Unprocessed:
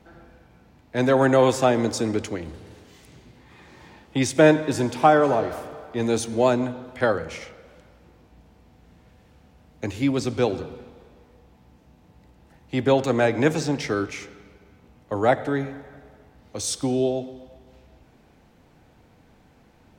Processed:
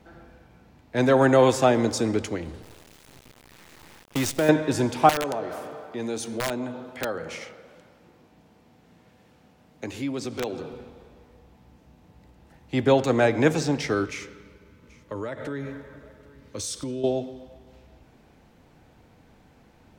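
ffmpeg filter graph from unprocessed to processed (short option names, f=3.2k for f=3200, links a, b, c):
-filter_complex "[0:a]asettb=1/sr,asplit=3[a][b][c];[a]atrim=end=2.624[d];[b]atrim=start=2.62:end=4.49,asetpts=PTS-STARTPTS,afade=t=in:d=0.004:c=qsin,afade=t=out:st=1.866:d=0.004:c=qsin,acrusher=bits=5:dc=4:mix=0:aa=0.000001,acompressor=threshold=-21dB:ratio=3:attack=3.2:release=140:knee=1:detection=peak[e];[c]atrim=start=4.486[f];[d][e]acrossfade=d=0.004:c1=hsin:c2=qsin[g];[g][f]acrossfade=d=0.004:c1=qsin:c2=hsin,asettb=1/sr,asplit=3[h][i][j];[h]atrim=end=5.094[k];[i]atrim=start=5.09:end=10.74,asetpts=PTS-STARTPTS,afade=t=in:d=0.004:c=qsin,afade=t=out:st=5.646:d=0.004:c=qsin,highpass=140,acompressor=threshold=-31dB:ratio=2:attack=3.2:release=140:knee=1:detection=peak,aeval=exprs='(mod(9.44*val(0)+1,2)-1)/9.44':c=same[l];[j]atrim=start=10.736[m];[k][l]acrossfade=d=0.004:c1=hsin:c2=qsin[n];[n][m]acrossfade=d=0.004:c1=qsin:c2=hsin,asettb=1/sr,asplit=3[o][p][q];[o]atrim=end=14.054[r];[p]atrim=start=14.05:end=17.04,asetpts=PTS-STARTPTS,afade=t=in:d=0.004:c=qsin,afade=t=out:st=2.986:d=0.004:c=qsin,acompressor=threshold=-28dB:ratio=6:attack=3.2:release=140:knee=1:detection=peak,asuperstop=centerf=750:order=4:qfactor=3.6,aecho=1:1:782:0.0794,atrim=end_sample=131859[s];[q]atrim=start=17.036[t];[r][s]acrossfade=d=0.004:c1=hsin:c2=qsin[u];[u][t]acrossfade=d=0.004:c1=qsin:c2=hsin"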